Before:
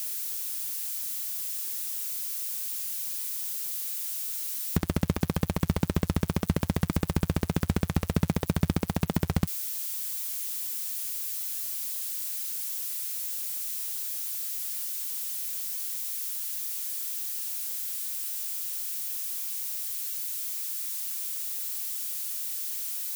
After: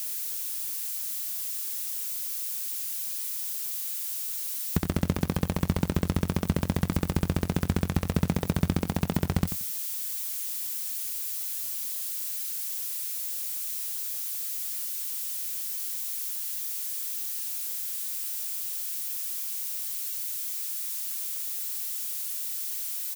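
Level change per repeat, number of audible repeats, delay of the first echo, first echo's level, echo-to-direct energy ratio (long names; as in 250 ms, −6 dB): −13.0 dB, 2, 89 ms, −11.0 dB, −11.0 dB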